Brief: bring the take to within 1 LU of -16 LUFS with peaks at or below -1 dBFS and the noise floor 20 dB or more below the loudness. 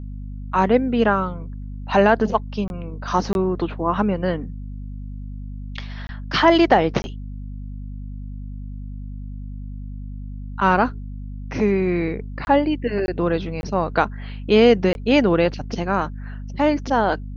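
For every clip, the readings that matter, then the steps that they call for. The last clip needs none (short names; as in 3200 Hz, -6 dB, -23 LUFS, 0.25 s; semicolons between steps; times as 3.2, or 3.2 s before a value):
dropouts 8; longest dropout 21 ms; hum 50 Hz; harmonics up to 250 Hz; hum level -30 dBFS; loudness -20.0 LUFS; peak -2.0 dBFS; loudness target -16.0 LUFS
-> interpolate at 2.68/3.33/6.07/7.02/12.45/13.06/13.61/14.93, 21 ms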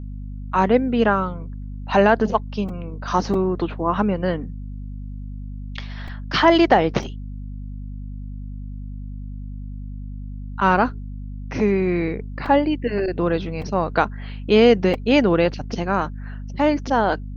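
dropouts 0; hum 50 Hz; harmonics up to 250 Hz; hum level -30 dBFS
-> notches 50/100/150/200/250 Hz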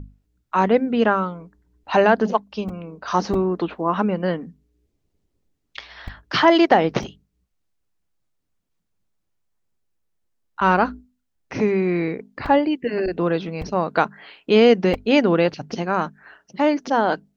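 hum none; loudness -20.5 LUFS; peak -2.5 dBFS; loudness target -16.0 LUFS
-> gain +4.5 dB; limiter -1 dBFS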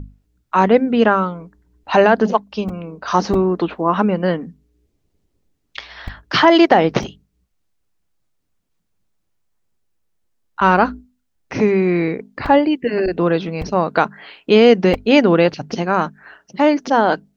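loudness -16.5 LUFS; peak -1.0 dBFS; noise floor -69 dBFS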